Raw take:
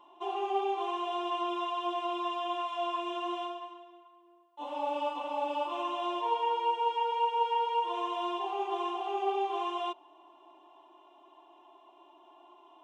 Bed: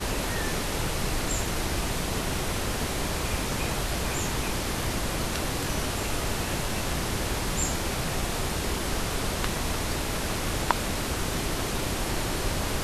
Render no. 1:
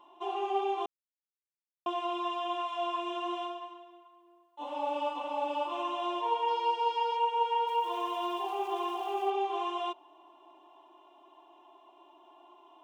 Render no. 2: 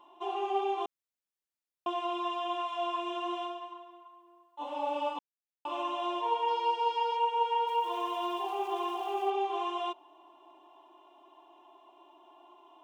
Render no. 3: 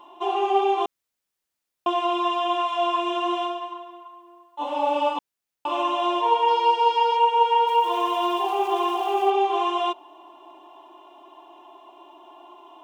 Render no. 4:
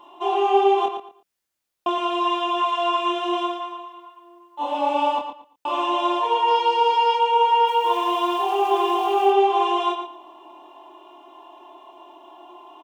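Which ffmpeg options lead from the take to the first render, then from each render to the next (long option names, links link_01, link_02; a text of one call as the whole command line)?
ffmpeg -i in.wav -filter_complex "[0:a]asettb=1/sr,asplit=3[link_01][link_02][link_03];[link_01]atrim=end=6.484[link_04];[link_02]atrim=start=6.48:end=7.17,asetpts=PTS-STARTPTS,afade=type=in:duration=0.004:curve=qsin,afade=type=out:start_time=0.686:duration=0.004:curve=qsin,equalizer=frequency=4800:width_type=o:width=0.46:gain=14[link_05];[link_03]atrim=start=7.166[link_06];[link_04][link_05]acrossfade=duration=0.004:curve1=hsin:curve2=qsin[link_07];[link_07][link_06]acrossfade=duration=0.004:curve1=qsin:curve2=hsin,asettb=1/sr,asplit=3[link_08][link_09][link_10];[link_08]atrim=end=7.674[link_11];[link_09]atrim=start=7.67:end=9.3,asetpts=PTS-STARTPTS,afade=type=in:duration=0.004:curve=qsin,afade=type=out:start_time=1.626:duration=0.004:curve=qsin,aeval=exprs='val(0)*gte(abs(val(0)),0.00355)':channel_layout=same[link_12];[link_10]atrim=start=9.296[link_13];[link_11][link_12]acrossfade=duration=0.004:curve1=hsin:curve2=qsin[link_14];[link_14][link_13]acrossfade=duration=0.004:curve1=qsin:curve2=hsin,asplit=3[link_15][link_16][link_17];[link_15]atrim=end=0.86,asetpts=PTS-STARTPTS,afade=type=out:start_time=0.856:duration=0.004:curve=hsin[link_18];[link_16]atrim=start=0.86:end=1.86,asetpts=PTS-STARTPTS,volume=0[link_19];[link_17]atrim=start=1.86,asetpts=PTS-STARTPTS,afade=type=in:duration=0.004:curve=hsin[link_20];[link_18][link_19][link_20]concat=n=3:v=0:a=1" out.wav
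ffmpeg -i in.wav -filter_complex "[0:a]asettb=1/sr,asplit=3[link_01][link_02][link_03];[link_01]atrim=end=3.724[link_04];[link_02]atrim=start=3.72:end=4.63,asetpts=PTS-STARTPTS,afade=type=in:duration=0.004:curve=qsin,afade=type=out:start_time=0.906:duration=0.004:curve=qsin,equalizer=frequency=1100:width_type=o:width=0.64:gain=5.5[link_05];[link_03]atrim=start=4.626[link_06];[link_04][link_05]acrossfade=duration=0.004:curve1=hsin:curve2=qsin[link_07];[link_07][link_06]acrossfade=duration=0.004:curve1=qsin:curve2=hsin,asplit=3[link_08][link_09][link_10];[link_08]atrim=end=5.19,asetpts=PTS-STARTPTS,afade=type=out:start_time=5.186:duration=0.004:curve=hsin[link_11];[link_09]atrim=start=5.19:end=5.65,asetpts=PTS-STARTPTS,volume=0[link_12];[link_10]atrim=start=5.65,asetpts=PTS-STARTPTS,afade=type=in:duration=0.004:curve=hsin[link_13];[link_11][link_12][link_13]concat=n=3:v=0:a=1" out.wav
ffmpeg -i in.wav -af "volume=10dB" out.wav
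ffmpeg -i in.wav -filter_complex "[0:a]asplit=2[link_01][link_02];[link_02]adelay=25,volume=-3.5dB[link_03];[link_01][link_03]amix=inputs=2:normalize=0,asplit=2[link_04][link_05];[link_05]adelay=115,lowpass=frequency=4900:poles=1,volume=-7dB,asplit=2[link_06][link_07];[link_07]adelay=115,lowpass=frequency=4900:poles=1,volume=0.24,asplit=2[link_08][link_09];[link_09]adelay=115,lowpass=frequency=4900:poles=1,volume=0.24[link_10];[link_06][link_08][link_10]amix=inputs=3:normalize=0[link_11];[link_04][link_11]amix=inputs=2:normalize=0" out.wav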